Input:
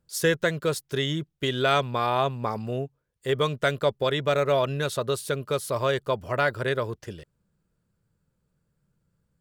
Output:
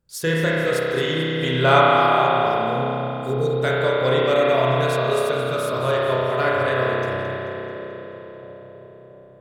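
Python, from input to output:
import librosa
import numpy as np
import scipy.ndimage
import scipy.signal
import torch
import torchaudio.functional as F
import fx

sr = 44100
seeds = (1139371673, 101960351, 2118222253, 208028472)

y = fx.peak_eq(x, sr, hz=930.0, db=9.0, octaves=1.3, at=(0.8, 1.81))
y = fx.spec_erase(y, sr, start_s=2.45, length_s=1.07, low_hz=520.0, high_hz=3600.0)
y = fx.echo_split(y, sr, split_hz=700.0, low_ms=677, high_ms=218, feedback_pct=52, wet_db=-11.5)
y = fx.rev_spring(y, sr, rt60_s=3.7, pass_ms=(31,), chirp_ms=35, drr_db=-6.5)
y = y * librosa.db_to_amplitude(-1.5)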